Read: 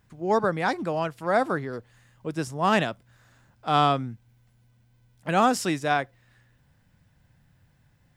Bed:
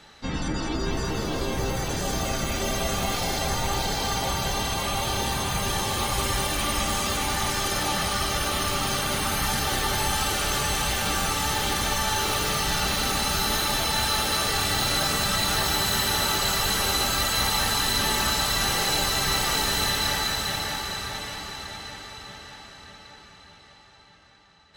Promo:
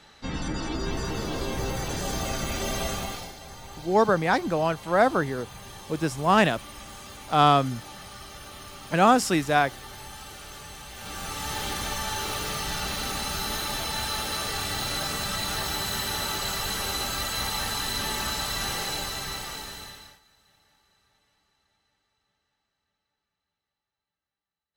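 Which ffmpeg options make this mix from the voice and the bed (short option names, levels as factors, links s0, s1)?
-filter_complex "[0:a]adelay=3650,volume=1.33[s0];[1:a]volume=2.82,afade=t=out:st=2.84:d=0.5:silence=0.188365,afade=t=in:st=10.92:d=0.66:silence=0.266073,afade=t=out:st=18.72:d=1.48:silence=0.0316228[s1];[s0][s1]amix=inputs=2:normalize=0"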